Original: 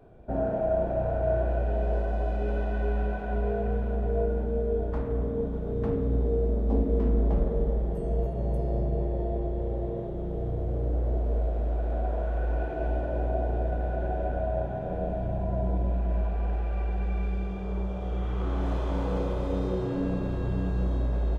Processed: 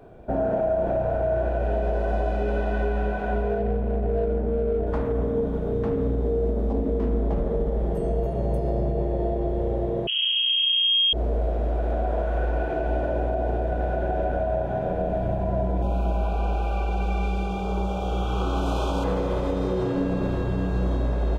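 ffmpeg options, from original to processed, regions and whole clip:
ffmpeg -i in.wav -filter_complex "[0:a]asettb=1/sr,asplit=3[link_01][link_02][link_03];[link_01]atrim=end=3.584[link_04];[link_02]atrim=start=3.58:end=4.87,asetpts=PTS-STARTPTS,afade=type=in:duration=0.004:curve=qsin,afade=type=out:start_time=1.286:duration=0.004:curve=qsin,equalizer=frequency=1300:width=1.3:gain=-8,adynamicsmooth=sensitivity=5.5:basefreq=1500[link_05];[link_03]atrim=start=4.866[link_06];[link_04][link_05]acrossfade=duration=0.004:curve1=hsin:curve2=qsin[link_07];[link_07][link_06]acrossfade=duration=0.004:curve1=qsin:curve2=hsin,asettb=1/sr,asplit=3[link_08][link_09][link_10];[link_08]atrim=end=10.074[link_11];[link_09]atrim=start=10.07:end=11.13,asetpts=PTS-STARTPTS,afade=type=in:duration=0.004:curve=qsin,afade=type=out:start_time=1.056:duration=0.004:curve=qsin,asubboost=boost=6.5:cutoff=130,lowpass=frequency=2800:width_type=q:width=0.5098,lowpass=frequency=2800:width_type=q:width=0.6013,lowpass=frequency=2800:width_type=q:width=0.9,lowpass=frequency=2800:width_type=q:width=2.563,afreqshift=-3300[link_12];[link_10]atrim=start=11.126[link_13];[link_11][link_12]acrossfade=duration=0.004:curve1=hsin:curve2=qsin[link_14];[link_14][link_13]acrossfade=duration=0.004:curve1=qsin:curve2=hsin,asettb=1/sr,asplit=3[link_15][link_16][link_17];[link_15]atrim=end=15.824[link_18];[link_16]atrim=start=15.82:end=19.04,asetpts=PTS-STARTPTS,afade=type=in:duration=0.004:curve=qsin,afade=type=out:start_time=3.216:duration=0.004:curve=qsin,highshelf=frequency=2600:gain=9.5,aeval=exprs='val(0)+0.00794*sin(2*PI*800*n/s)':channel_layout=same,asuperstop=centerf=1900:order=20:qfactor=2.3[link_19];[link_17]atrim=start=19.036[link_20];[link_18][link_19]acrossfade=duration=0.004:curve1=hsin:curve2=qsin[link_21];[link_21][link_20]acrossfade=duration=0.004:curve1=qsin:curve2=hsin,lowshelf=frequency=190:gain=-5.5,alimiter=limit=-24dB:level=0:latency=1:release=84,volume=8dB" out.wav

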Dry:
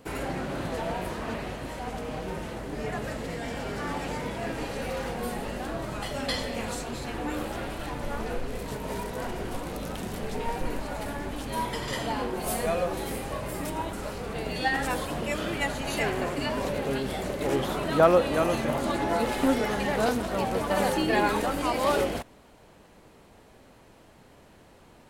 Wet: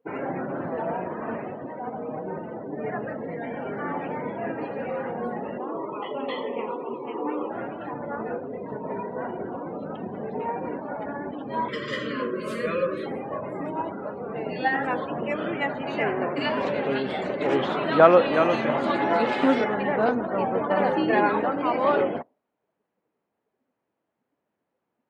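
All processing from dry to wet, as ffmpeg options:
ffmpeg -i in.wav -filter_complex "[0:a]asettb=1/sr,asplit=3[link_01][link_02][link_03];[link_01]atrim=end=5.584[link_04];[link_02]atrim=start=5.58:end=7.5,asetpts=PTS-STARTPTS,afade=type=in:duration=0.004:curve=qsin,afade=type=out:start_time=1.916:duration=0.004:curve=qsin,aeval=exprs='0.075*(abs(mod(val(0)/0.075+3,4)-2)-1)':channel_layout=same,highpass=190,equalizer=frequency=210:width_type=q:width=4:gain=-4,equalizer=frequency=420:width_type=q:width=4:gain=7,equalizer=frequency=680:width_type=q:width=4:gain=-6,equalizer=frequency=1000:width_type=q:width=4:gain=7,equalizer=frequency=1600:width_type=q:width=4:gain=-9,equalizer=frequency=3200:width_type=q:width=4:gain=4,lowpass=frequency=3400:width=0.5412,lowpass=frequency=3400:width=1.3066[link_05];[link_03]atrim=start=7.496[link_06];[link_04][link_05]acrossfade=duration=0.004:curve1=hsin:curve2=qsin[link_07];[link_07][link_06]acrossfade=duration=0.004:curve1=qsin:curve2=hsin,asettb=1/sr,asplit=3[link_08][link_09][link_10];[link_08]atrim=end=11.684[link_11];[link_09]atrim=start=11.68:end=13.06,asetpts=PTS-STARTPTS,afade=type=in:duration=0.004:curve=qsin,afade=type=out:start_time=1.376:duration=0.004:curve=qsin,asuperstop=centerf=800:order=20:qfactor=2.1,highshelf=frequency=2300:gain=7.5[link_12];[link_10]atrim=start=13.056[link_13];[link_11][link_12]acrossfade=duration=0.004:curve1=hsin:curve2=qsin[link_14];[link_14][link_13]acrossfade=duration=0.004:curve1=qsin:curve2=hsin,asettb=1/sr,asplit=3[link_15][link_16][link_17];[link_15]atrim=end=16.364[link_18];[link_16]atrim=start=16.36:end=19.64,asetpts=PTS-STARTPTS,afade=type=in:duration=0.004:curve=qsin,afade=type=out:start_time=3.276:duration=0.004:curve=qsin,lowpass=10000,highshelf=frequency=2300:gain=11[link_19];[link_17]atrim=start=19.636[link_20];[link_18][link_19]acrossfade=duration=0.004:curve1=hsin:curve2=qsin[link_21];[link_21][link_20]acrossfade=duration=0.004:curve1=qsin:curve2=hsin,highpass=180,afftdn=noise_reduction=28:noise_floor=-38,lowpass=2200,volume=3.5dB" out.wav

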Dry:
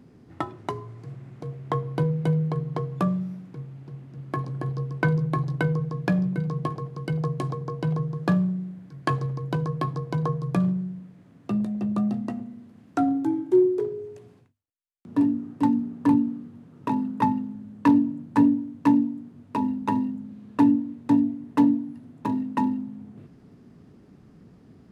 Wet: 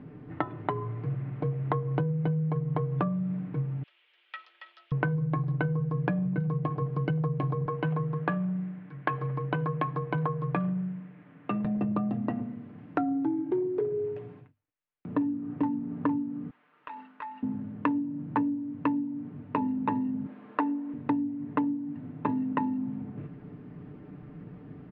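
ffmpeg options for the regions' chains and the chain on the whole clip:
ffmpeg -i in.wav -filter_complex "[0:a]asettb=1/sr,asplit=3[link_01][link_02][link_03];[link_01]atrim=end=3.834[link_04];[link_02]atrim=start=3.83:end=4.92,asetpts=PTS-STARTPTS,afade=type=in:duration=0.004:curve=qsin,afade=type=out:start_time=1.086:duration=0.004:curve=qsin,highpass=frequency=3000:width_type=q:width=2.6,afreqshift=210[link_05];[link_03]atrim=start=4.916[link_06];[link_04][link_05]acrossfade=duration=0.004:curve1=hsin:curve2=qsin[link_07];[link_07][link_06]acrossfade=duration=0.004:curve1=qsin:curve2=hsin,asettb=1/sr,asplit=3[link_08][link_09][link_10];[link_08]atrim=end=7.664[link_11];[link_09]atrim=start=7.66:end=11.65,asetpts=PTS-STARTPTS,afade=type=in:duration=0.004:curve=qsin,afade=type=out:start_time=3.986:duration=0.004:curve=qsin,highpass=140,lowpass=2700,tiltshelf=frequency=1100:gain=-6.5[link_12];[link_10]atrim=start=11.646[link_13];[link_11][link_12]acrossfade=duration=0.004:curve1=hsin:curve2=qsin[link_14];[link_14][link_13]acrossfade=duration=0.004:curve1=qsin:curve2=hsin,asettb=1/sr,asplit=3[link_15][link_16][link_17];[link_15]atrim=end=16.504[link_18];[link_16]atrim=start=16.5:end=17.43,asetpts=PTS-STARTPTS,afade=type=in:duration=0.004:curve=qsin,afade=type=out:start_time=0.926:duration=0.004:curve=qsin,highpass=1400,acompressor=threshold=-43dB:ratio=5:attack=3.2:release=140:knee=1:detection=peak[link_19];[link_17]atrim=start=17.426[link_20];[link_18][link_19]acrossfade=duration=0.004:curve1=hsin:curve2=qsin[link_21];[link_21][link_20]acrossfade=duration=0.004:curve1=qsin:curve2=hsin,asettb=1/sr,asplit=3[link_22][link_23][link_24];[link_22]atrim=end=20.264[link_25];[link_23]atrim=start=20.26:end=20.94,asetpts=PTS-STARTPTS,afade=type=in:duration=0.004:curve=qsin,afade=type=out:start_time=0.676:duration=0.004:curve=qsin,highpass=370,equalizer=frequency=1200:width=0.58:gain=5.5[link_26];[link_24]atrim=start=20.936[link_27];[link_25][link_26]acrossfade=duration=0.004:curve1=hsin:curve2=qsin[link_28];[link_28][link_27]acrossfade=duration=0.004:curve1=qsin:curve2=hsin,lowpass=frequency=2700:width=0.5412,lowpass=frequency=2700:width=1.3066,aecho=1:1:6.7:0.52,acompressor=threshold=-30dB:ratio=16,volume=5dB" out.wav

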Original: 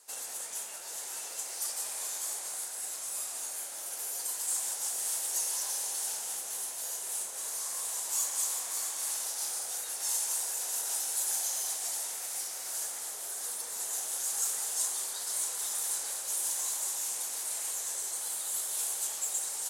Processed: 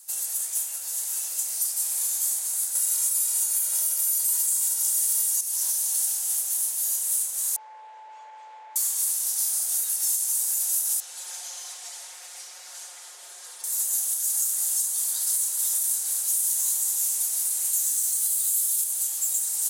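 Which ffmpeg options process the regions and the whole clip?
ffmpeg -i in.wav -filter_complex "[0:a]asettb=1/sr,asplit=3[link_01][link_02][link_03];[link_01]atrim=end=2.754[link_04];[link_02]atrim=start=2.75:end=5.41,asetpts=PTS-STARTPTS,afade=type=in:duration=0.004:curve=qsin,afade=type=out:start_time=2.656:duration=0.004:curve=qsin,aecho=1:1:2.1:0.94,atrim=end_sample=117306,acontrast=56[link_05];[link_03]atrim=start=5.406[link_06];[link_04][link_05]acrossfade=duration=0.004:curve1=hsin:curve2=qsin[link_07];[link_07][link_06]acrossfade=duration=0.004:curve1=qsin:curve2=hsin,asettb=1/sr,asplit=3[link_08][link_09][link_10];[link_08]atrim=end=7.564[link_11];[link_09]atrim=start=7.56:end=8.76,asetpts=PTS-STARTPTS,afade=type=in:duration=0.004:curve=qsin,afade=type=out:start_time=1.196:duration=0.004:curve=qsin,aeval=exprs='val(0)+0.0141*sin(2*PI*870*n/s)':channel_layout=same,highpass=frequency=250:width=0.5412,highpass=frequency=250:width=1.3066,equalizer=frequency=270:width_type=q:width=4:gain=-5,equalizer=frequency=570:width_type=q:width=4:gain=3,equalizer=frequency=1200:width_type=q:width=4:gain=-10,equalizer=frequency=1800:width_type=q:width=4:gain=-3,lowpass=frequency=2100:width=0.5412,lowpass=frequency=2100:width=1.3066[link_12];[link_10]atrim=start=8.756[link_13];[link_11][link_12]acrossfade=duration=0.004:curve1=hsin:curve2=qsin[link_14];[link_14][link_13]acrossfade=duration=0.004:curve1=qsin:curve2=hsin,asettb=1/sr,asplit=3[link_15][link_16][link_17];[link_15]atrim=end=11.004[link_18];[link_16]atrim=start=11:end=13.64,asetpts=PTS-STARTPTS,afade=type=in:duration=0.004:curve=qsin,afade=type=out:start_time=2.636:duration=0.004:curve=qsin,highpass=300,lowpass=3500,aecho=1:1:5.6:0.67,atrim=end_sample=116424[link_19];[link_17]atrim=start=13.636[link_20];[link_18][link_19]acrossfade=duration=0.004:curve1=hsin:curve2=qsin[link_21];[link_21][link_20]acrossfade=duration=0.004:curve1=qsin:curve2=hsin,asettb=1/sr,asplit=3[link_22][link_23][link_24];[link_22]atrim=end=17.734[link_25];[link_23]atrim=start=17.73:end=18.84,asetpts=PTS-STARTPTS,afade=type=in:duration=0.004:curve=qsin,afade=type=out:start_time=1.106:duration=0.004:curve=qsin,highshelf=frequency=3000:gain=5,acrusher=bits=7:mix=0:aa=0.5[link_26];[link_24]atrim=start=18.836[link_27];[link_25][link_26]acrossfade=duration=0.004:curve1=hsin:curve2=qsin[link_28];[link_28][link_27]acrossfade=duration=0.004:curve1=qsin:curve2=hsin,highpass=frequency=240:poles=1,aemphasis=mode=production:type=riaa,alimiter=limit=-10.5dB:level=0:latency=1:release=302,volume=-3.5dB" out.wav

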